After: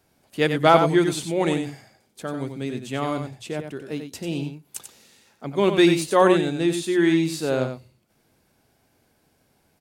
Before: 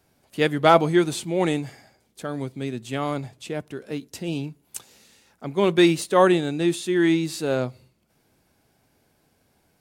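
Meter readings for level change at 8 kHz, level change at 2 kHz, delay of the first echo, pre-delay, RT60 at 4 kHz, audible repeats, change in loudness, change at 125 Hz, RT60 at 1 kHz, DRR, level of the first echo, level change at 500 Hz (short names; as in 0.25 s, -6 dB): +0.5 dB, +0.5 dB, 92 ms, none, none, 1, +0.5 dB, +0.5 dB, none, none, -7.5 dB, +0.5 dB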